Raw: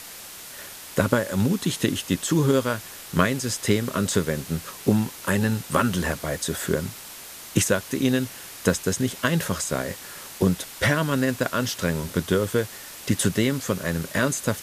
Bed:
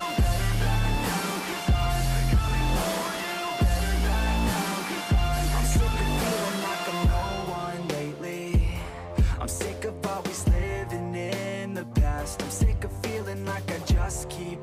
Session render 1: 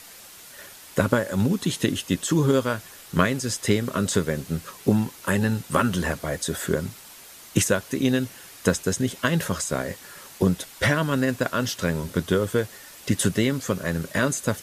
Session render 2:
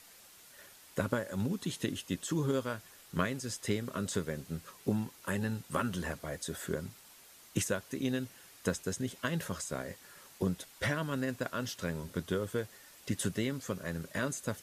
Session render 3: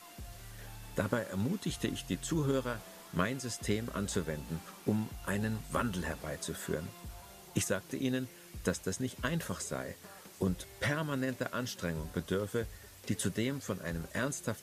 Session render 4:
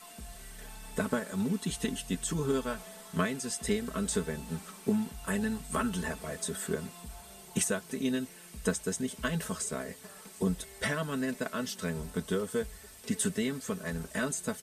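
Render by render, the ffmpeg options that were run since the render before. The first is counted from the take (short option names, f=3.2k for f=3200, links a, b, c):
-af "afftdn=nr=6:nf=-41"
-af "volume=-11.5dB"
-filter_complex "[1:a]volume=-25dB[a];[0:a][a]amix=inputs=2:normalize=0"
-af "equalizer=f=8.5k:w=5.4:g=9.5,aecho=1:1:4.6:0.72"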